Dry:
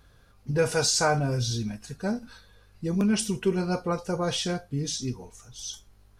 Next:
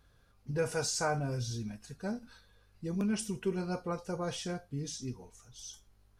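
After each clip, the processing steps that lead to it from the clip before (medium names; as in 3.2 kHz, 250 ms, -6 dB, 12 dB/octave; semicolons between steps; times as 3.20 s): dynamic bell 3.8 kHz, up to -6 dB, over -44 dBFS, Q 1.6; trim -8 dB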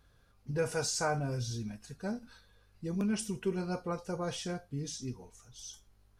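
no audible change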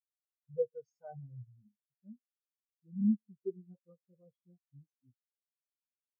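spectral contrast expander 4:1; trim -1.5 dB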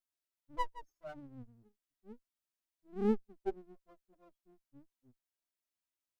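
comb filter that takes the minimum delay 3.1 ms; trim +2 dB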